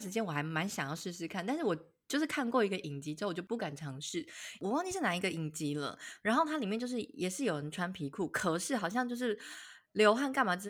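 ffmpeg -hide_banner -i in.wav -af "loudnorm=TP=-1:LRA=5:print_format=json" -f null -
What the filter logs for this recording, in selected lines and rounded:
"input_i" : "-34.4",
"input_tp" : "-13.3",
"input_lra" : "4.1",
"input_thresh" : "-44.6",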